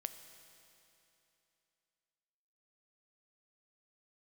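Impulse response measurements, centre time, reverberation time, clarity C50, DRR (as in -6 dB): 26 ms, 3.0 s, 10.0 dB, 9.0 dB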